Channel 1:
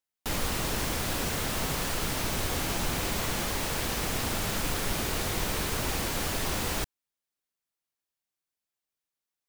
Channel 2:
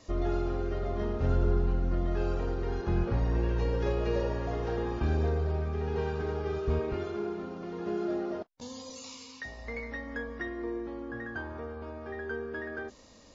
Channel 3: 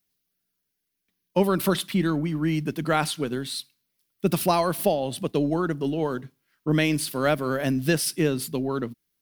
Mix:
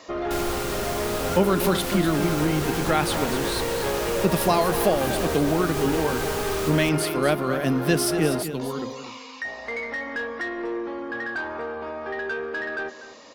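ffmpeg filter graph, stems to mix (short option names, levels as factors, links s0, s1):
-filter_complex "[0:a]adelay=50,volume=0.944[s0];[1:a]acrossover=split=3000[s1][s2];[s2]acompressor=threshold=0.00126:ratio=4:attack=1:release=60[s3];[s1][s3]amix=inputs=2:normalize=0,highpass=f=220:p=1,asplit=2[s4][s5];[s5]highpass=f=720:p=1,volume=8.91,asoftclip=type=tanh:threshold=0.0841[s6];[s4][s6]amix=inputs=2:normalize=0,lowpass=f=2800:p=1,volume=0.501,volume=1.26,asplit=2[s7][s8];[s8]volume=0.188[s9];[2:a]dynaudnorm=f=120:g=13:m=3.76,volume=0.447,asplit=3[s10][s11][s12];[s11]volume=0.299[s13];[s12]apad=whole_len=420489[s14];[s0][s14]sidechaincompress=threshold=0.0708:ratio=8:attack=47:release=198[s15];[s9][s13]amix=inputs=2:normalize=0,aecho=0:1:244:1[s16];[s15][s7][s10][s16]amix=inputs=4:normalize=0"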